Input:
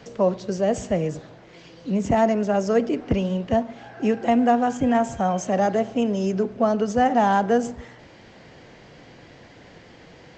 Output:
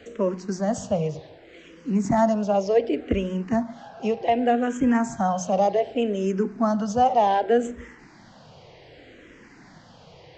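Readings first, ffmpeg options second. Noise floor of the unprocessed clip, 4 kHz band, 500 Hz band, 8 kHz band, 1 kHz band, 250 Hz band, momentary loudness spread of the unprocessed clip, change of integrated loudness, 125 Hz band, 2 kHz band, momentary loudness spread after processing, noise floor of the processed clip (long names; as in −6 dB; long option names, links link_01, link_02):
−48 dBFS, −1.0 dB, −1.0 dB, −0.5 dB, −0.5 dB, −2.0 dB, 8 LU, −1.0 dB, −2.0 dB, −3.0 dB, 7 LU, −50 dBFS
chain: -filter_complex "[0:a]bandreject=frequency=60:width_type=h:width=6,bandreject=frequency=120:width_type=h:width=6,bandreject=frequency=180:width_type=h:width=6,asplit=2[link_01][link_02];[link_02]afreqshift=-0.66[link_03];[link_01][link_03]amix=inputs=2:normalize=1,volume=1.5dB"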